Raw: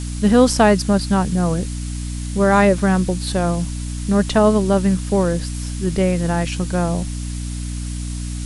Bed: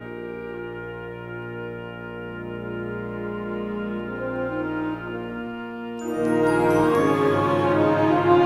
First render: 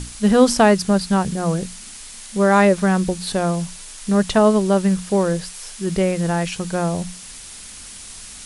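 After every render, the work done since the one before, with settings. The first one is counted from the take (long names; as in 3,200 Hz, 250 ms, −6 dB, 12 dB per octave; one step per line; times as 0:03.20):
mains-hum notches 60/120/180/240/300 Hz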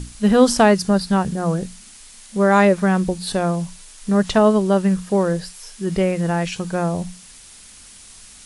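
noise reduction from a noise print 6 dB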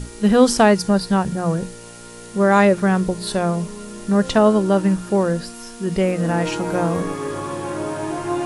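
mix in bed −6.5 dB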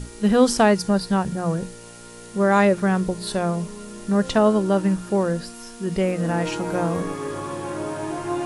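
level −3 dB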